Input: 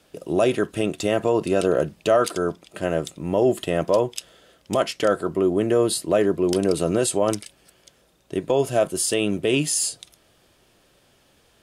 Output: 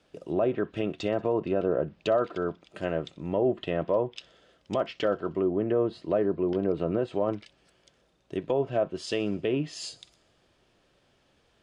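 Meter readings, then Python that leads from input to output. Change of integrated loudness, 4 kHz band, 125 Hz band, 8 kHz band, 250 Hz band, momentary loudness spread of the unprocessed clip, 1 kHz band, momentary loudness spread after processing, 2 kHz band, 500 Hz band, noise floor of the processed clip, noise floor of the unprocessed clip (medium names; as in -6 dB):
-6.5 dB, -10.5 dB, -6.0 dB, under -20 dB, -6.0 dB, 7 LU, -7.0 dB, 8 LU, -9.0 dB, -6.0 dB, -67 dBFS, -60 dBFS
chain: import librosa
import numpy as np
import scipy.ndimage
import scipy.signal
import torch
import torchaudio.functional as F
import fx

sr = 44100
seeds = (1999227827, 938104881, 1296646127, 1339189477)

y = fx.air_absorb(x, sr, metres=80.0)
y = fx.env_lowpass_down(y, sr, base_hz=1200.0, full_db=-16.5)
y = fx.echo_wet_highpass(y, sr, ms=62, feedback_pct=67, hz=3200.0, wet_db=-21)
y = fx.dynamic_eq(y, sr, hz=3500.0, q=0.87, threshold_db=-43.0, ratio=4.0, max_db=5)
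y = y * librosa.db_to_amplitude(-6.0)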